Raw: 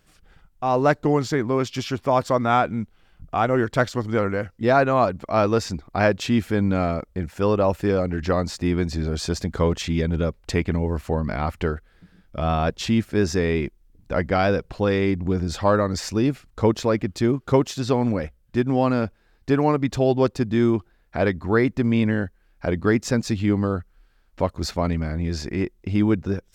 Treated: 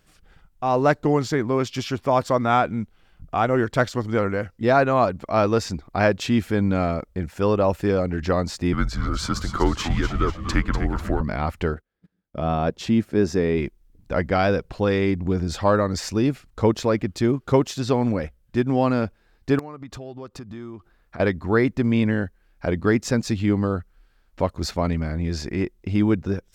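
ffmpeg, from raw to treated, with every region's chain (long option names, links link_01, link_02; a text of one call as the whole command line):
ffmpeg -i in.wav -filter_complex "[0:a]asettb=1/sr,asplit=3[link_01][link_02][link_03];[link_01]atrim=end=8.734[link_04];[link_02]atrim=start=8.73:end=11.21,asetpts=PTS-STARTPTS,afade=type=in:duration=0.004:curve=qsin,afade=type=out:start_time=2.476:duration=0.004:curve=qsin,afreqshift=-130,equalizer=frequency=1300:width_type=o:width=0.5:gain=13,asplit=6[link_05][link_06][link_07][link_08][link_09][link_10];[link_06]adelay=246,afreqshift=-120,volume=-9dB[link_11];[link_07]adelay=492,afreqshift=-240,volume=-15.6dB[link_12];[link_08]adelay=738,afreqshift=-360,volume=-22.1dB[link_13];[link_09]adelay=984,afreqshift=-480,volume=-28.7dB[link_14];[link_10]adelay=1230,afreqshift=-600,volume=-35.2dB[link_15];[link_05][link_11][link_12][link_13][link_14][link_15]amix=inputs=6:normalize=0,atrim=end_sample=109368[link_16];[link_03]atrim=start=11.206[link_17];[link_04][link_16]acrossfade=duration=0.004:curve1=hsin:curve2=qsin[link_18];[link_18][link_17]acrossfade=duration=0.004:curve1=qsin:curve2=hsin,asettb=1/sr,asplit=3[link_19][link_20][link_21];[link_19]atrim=end=11.744[link_22];[link_20]atrim=start=11.74:end=13.58,asetpts=PTS-STARTPTS,afade=type=in:duration=0.004:curve=qsin,afade=type=out:start_time=1.836:duration=0.004:curve=qsin,highpass=frequency=240:poles=1,agate=range=-21dB:threshold=-51dB:ratio=16:release=100:detection=peak,tiltshelf=frequency=700:gain=5.5[link_23];[link_21]atrim=start=13.576[link_24];[link_22][link_23]acrossfade=duration=0.004:curve1=hsin:curve2=qsin[link_25];[link_25][link_24]acrossfade=duration=0.004:curve1=qsin:curve2=hsin,asettb=1/sr,asplit=3[link_26][link_27][link_28];[link_26]atrim=end=19.594[link_29];[link_27]atrim=start=19.59:end=21.2,asetpts=PTS-STARTPTS,afade=type=in:duration=0.004:curve=qsin,afade=type=out:start_time=1.606:duration=0.004:curve=qsin,acompressor=threshold=-35dB:ratio=5:attack=3.2:release=140:knee=1:detection=peak,equalizer=frequency=1200:width=4.1:gain=7.5,aeval=exprs='(mod(13.3*val(0)+1,2)-1)/13.3':channel_layout=same[link_30];[link_28]atrim=start=21.196[link_31];[link_29][link_30]acrossfade=duration=0.004:curve1=hsin:curve2=qsin[link_32];[link_32][link_31]acrossfade=duration=0.004:curve1=qsin:curve2=hsin" out.wav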